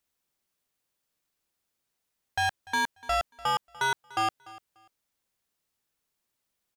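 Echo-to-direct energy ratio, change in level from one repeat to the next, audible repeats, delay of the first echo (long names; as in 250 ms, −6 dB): −20.0 dB, −13.5 dB, 2, 294 ms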